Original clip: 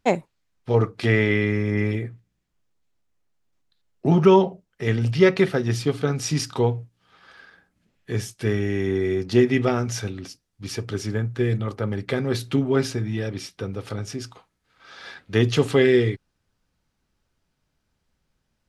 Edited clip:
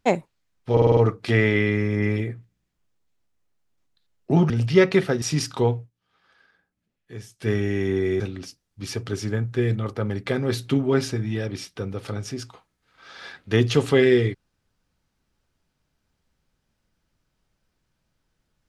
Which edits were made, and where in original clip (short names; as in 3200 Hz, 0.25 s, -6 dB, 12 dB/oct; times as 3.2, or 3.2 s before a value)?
0.72 stutter 0.05 s, 6 plays
4.25–4.95 cut
5.67–6.21 cut
6.72–8.49 dip -11.5 dB, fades 0.17 s
9.19–10.02 cut